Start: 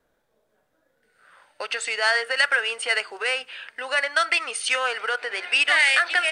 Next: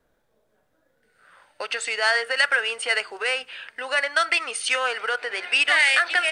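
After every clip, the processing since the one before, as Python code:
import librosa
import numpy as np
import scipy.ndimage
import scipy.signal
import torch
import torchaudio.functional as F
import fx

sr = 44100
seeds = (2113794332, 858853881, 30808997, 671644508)

y = fx.low_shelf(x, sr, hz=210.0, db=5.0)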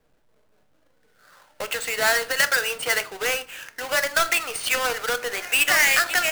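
y = fx.halfwave_hold(x, sr)
y = fx.room_shoebox(y, sr, seeds[0], volume_m3=270.0, walls='furnished', distance_m=0.48)
y = F.gain(torch.from_numpy(y), -3.5).numpy()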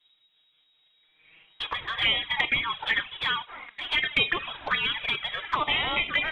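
y = fx.freq_invert(x, sr, carrier_hz=3800)
y = fx.env_flanger(y, sr, rest_ms=6.7, full_db=-17.5)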